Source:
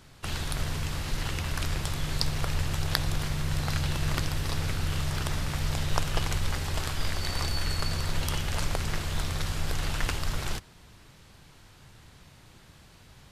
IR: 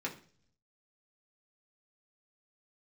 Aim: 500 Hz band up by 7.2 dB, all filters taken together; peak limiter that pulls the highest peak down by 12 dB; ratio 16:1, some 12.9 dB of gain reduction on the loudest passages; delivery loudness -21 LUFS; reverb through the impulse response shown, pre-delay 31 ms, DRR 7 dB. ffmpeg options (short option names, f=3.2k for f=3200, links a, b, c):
-filter_complex "[0:a]equalizer=f=500:t=o:g=9,acompressor=threshold=-33dB:ratio=16,alimiter=level_in=4dB:limit=-24dB:level=0:latency=1,volume=-4dB,asplit=2[a][b];[1:a]atrim=start_sample=2205,adelay=31[c];[b][c]afir=irnorm=-1:irlink=0,volume=-10dB[d];[a][d]amix=inputs=2:normalize=0,volume=19dB"